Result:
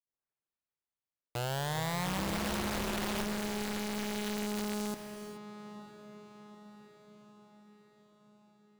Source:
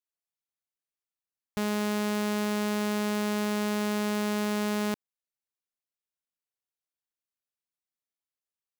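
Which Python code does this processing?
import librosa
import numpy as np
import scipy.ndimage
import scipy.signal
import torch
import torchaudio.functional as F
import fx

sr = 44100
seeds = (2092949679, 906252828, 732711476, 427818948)

y = fx.tape_start_head(x, sr, length_s=2.37)
y = fx.lowpass(y, sr, hz=1700.0, slope=6)
y = fx.echo_diffused(y, sr, ms=922, feedback_pct=52, wet_db=-11)
y = (np.mod(10.0 ** (25.5 / 20.0) * y + 1.0, 2.0) - 1.0) / 10.0 ** (25.5 / 20.0)
y = fx.rev_gated(y, sr, seeds[0], gate_ms=450, shape='rising', drr_db=8.5)
y = F.gain(torch.from_numpy(y), -5.0).numpy()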